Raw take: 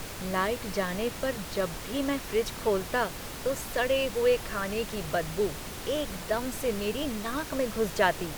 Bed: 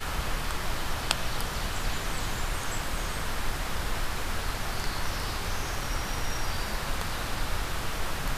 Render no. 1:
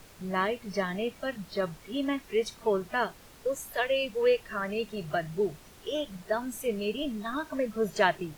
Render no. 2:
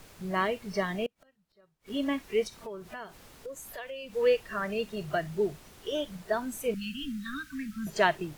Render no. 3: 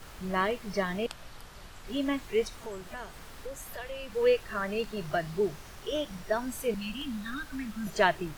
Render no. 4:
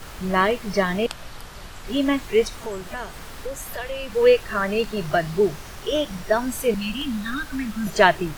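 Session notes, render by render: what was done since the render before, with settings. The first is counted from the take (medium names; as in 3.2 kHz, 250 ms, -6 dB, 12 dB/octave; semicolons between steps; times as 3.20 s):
noise print and reduce 14 dB
1.06–1.90 s: inverted gate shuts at -37 dBFS, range -33 dB; 2.47–4.15 s: compression 3:1, threshold -41 dBFS; 6.74–7.87 s: elliptic band-stop 260–1400 Hz
add bed -17 dB
trim +9 dB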